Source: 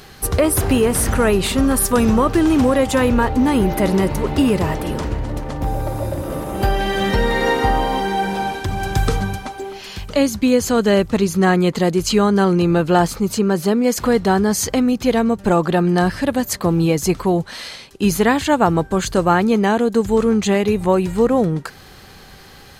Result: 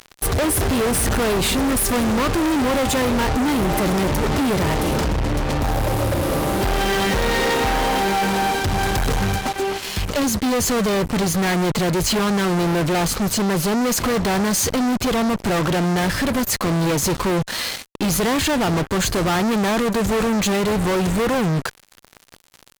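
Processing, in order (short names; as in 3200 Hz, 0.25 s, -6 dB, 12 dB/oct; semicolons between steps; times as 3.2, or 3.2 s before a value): fuzz box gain 32 dB, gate -34 dBFS; gain -4.5 dB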